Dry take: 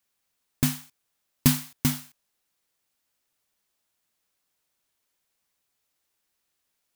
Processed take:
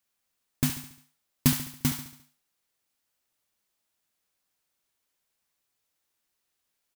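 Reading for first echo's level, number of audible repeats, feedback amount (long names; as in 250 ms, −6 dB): −10.0 dB, 5, 49%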